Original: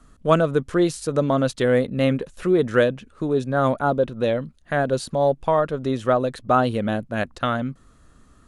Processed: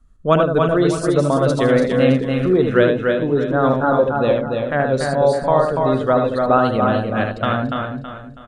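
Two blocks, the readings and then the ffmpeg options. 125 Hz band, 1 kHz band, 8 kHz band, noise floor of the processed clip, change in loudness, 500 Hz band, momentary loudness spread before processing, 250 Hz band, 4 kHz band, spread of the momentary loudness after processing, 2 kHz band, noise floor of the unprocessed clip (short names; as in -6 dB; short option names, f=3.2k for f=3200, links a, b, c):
+5.0 dB, +4.5 dB, n/a, -36 dBFS, +5.0 dB, +5.0 dB, 6 LU, +5.0 dB, +3.5 dB, 5 LU, +4.5 dB, -54 dBFS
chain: -filter_complex "[0:a]asplit=2[a][b];[b]aecho=0:1:75.8|288.6:0.562|0.631[c];[a][c]amix=inputs=2:normalize=0,afftdn=nr=16:nf=-40,asplit=2[d][e];[e]aecho=0:1:325|650|975|1300:0.335|0.124|0.0459|0.017[f];[d][f]amix=inputs=2:normalize=0,volume=2dB"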